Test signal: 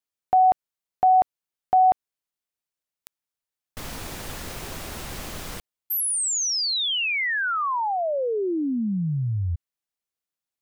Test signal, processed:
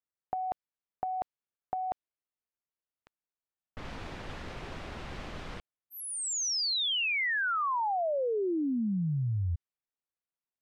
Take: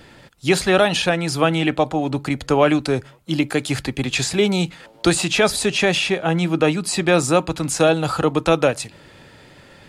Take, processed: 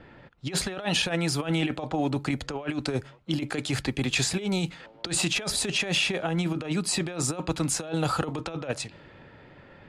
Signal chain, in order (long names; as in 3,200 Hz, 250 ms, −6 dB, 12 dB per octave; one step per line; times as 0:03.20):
compressor whose output falls as the input rises −20 dBFS, ratio −0.5
low-pass that shuts in the quiet parts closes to 1,900 Hz, open at −17 dBFS
level −6.5 dB